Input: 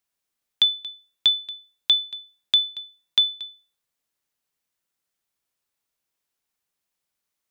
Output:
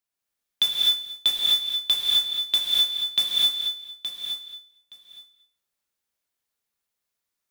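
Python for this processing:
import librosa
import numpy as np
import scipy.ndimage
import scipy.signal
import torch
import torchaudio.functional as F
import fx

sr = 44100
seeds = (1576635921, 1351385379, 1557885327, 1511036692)

p1 = fx.level_steps(x, sr, step_db=19)
p2 = x + (p1 * librosa.db_to_amplitude(1.0))
p3 = fx.mod_noise(p2, sr, seeds[0], snr_db=15)
p4 = fx.echo_feedback(p3, sr, ms=870, feedback_pct=16, wet_db=-10)
p5 = fx.rev_gated(p4, sr, seeds[1], gate_ms=280, shape='rising', drr_db=-2.5)
y = p5 * librosa.db_to_amplitude(-8.0)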